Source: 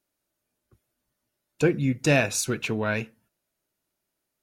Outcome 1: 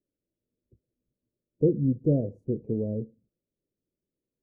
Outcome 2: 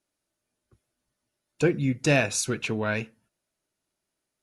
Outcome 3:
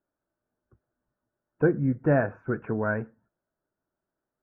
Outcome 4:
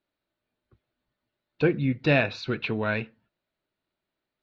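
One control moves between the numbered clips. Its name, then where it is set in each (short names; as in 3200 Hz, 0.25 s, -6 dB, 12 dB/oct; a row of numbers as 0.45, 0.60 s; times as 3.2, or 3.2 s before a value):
elliptic low-pass, frequency: 510, 11000, 1600, 4200 Hz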